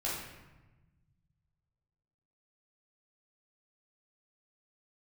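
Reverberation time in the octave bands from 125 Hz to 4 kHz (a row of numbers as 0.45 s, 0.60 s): 2.6 s, 1.9 s, 1.1 s, 1.1 s, 1.0 s, 0.75 s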